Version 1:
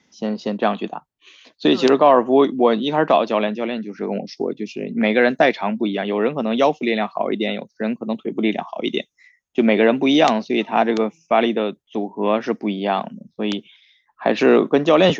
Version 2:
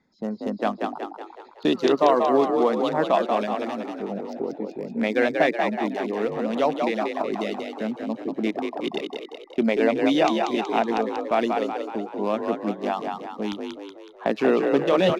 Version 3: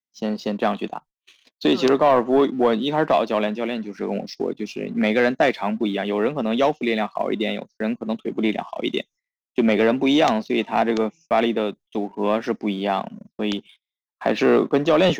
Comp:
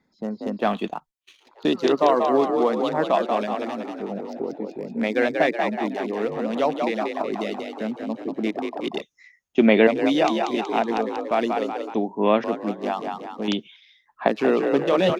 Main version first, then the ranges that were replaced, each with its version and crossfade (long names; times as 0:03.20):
2
0:00.62–0:01.52: punch in from 3, crossfade 0.24 s
0:09.02–0:09.87: punch in from 1
0:11.94–0:12.44: punch in from 1
0:13.48–0:14.28: punch in from 1